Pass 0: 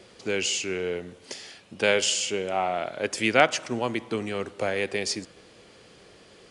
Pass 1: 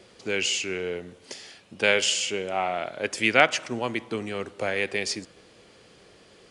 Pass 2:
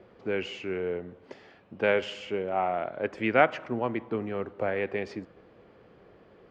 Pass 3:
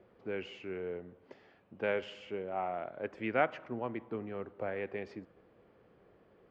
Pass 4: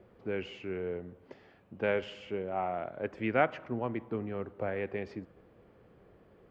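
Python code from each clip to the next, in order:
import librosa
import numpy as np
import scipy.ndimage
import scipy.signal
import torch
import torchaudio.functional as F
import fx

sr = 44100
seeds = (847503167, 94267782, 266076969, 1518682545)

y1 = fx.dynamic_eq(x, sr, hz=2200.0, q=0.94, threshold_db=-35.0, ratio=4.0, max_db=5)
y1 = y1 * librosa.db_to_amplitude(-1.5)
y2 = scipy.signal.sosfilt(scipy.signal.butter(2, 1400.0, 'lowpass', fs=sr, output='sos'), y1)
y3 = fx.high_shelf(y2, sr, hz=5000.0, db=-8.5)
y3 = y3 * librosa.db_to_amplitude(-8.0)
y4 = fx.low_shelf(y3, sr, hz=160.0, db=8.0)
y4 = y4 * librosa.db_to_amplitude(2.0)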